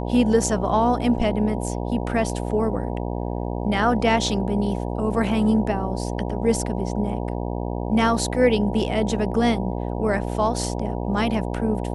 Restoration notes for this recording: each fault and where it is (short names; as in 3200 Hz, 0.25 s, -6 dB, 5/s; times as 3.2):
buzz 60 Hz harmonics 16 -27 dBFS